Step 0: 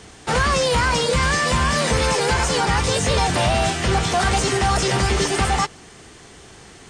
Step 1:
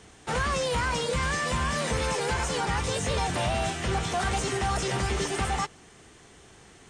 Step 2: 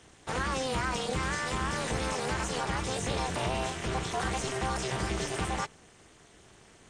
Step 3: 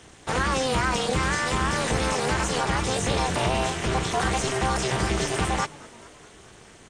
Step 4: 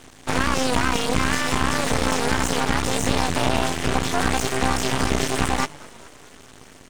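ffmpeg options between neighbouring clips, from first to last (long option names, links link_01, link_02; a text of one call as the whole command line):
ffmpeg -i in.wav -af "equalizer=frequency=4700:width_type=o:width=0.37:gain=-4,volume=-8.5dB" out.wav
ffmpeg -i in.wav -af "tremolo=f=260:d=0.947" out.wav
ffmpeg -i in.wav -filter_complex "[0:a]asplit=6[link_01][link_02][link_03][link_04][link_05][link_06];[link_02]adelay=213,afreqshift=83,volume=-22.5dB[link_07];[link_03]adelay=426,afreqshift=166,volume=-26.2dB[link_08];[link_04]adelay=639,afreqshift=249,volume=-30dB[link_09];[link_05]adelay=852,afreqshift=332,volume=-33.7dB[link_10];[link_06]adelay=1065,afreqshift=415,volume=-37.5dB[link_11];[link_01][link_07][link_08][link_09][link_10][link_11]amix=inputs=6:normalize=0,volume=7dB" out.wav
ffmpeg -i in.wav -af "aeval=exprs='max(val(0),0)':channel_layout=same,volume=6.5dB" out.wav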